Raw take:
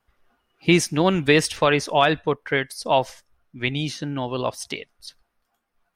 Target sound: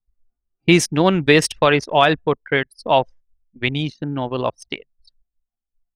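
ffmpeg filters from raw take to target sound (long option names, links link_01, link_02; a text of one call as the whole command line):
ffmpeg -i in.wav -af "anlmdn=100,volume=3.5dB" out.wav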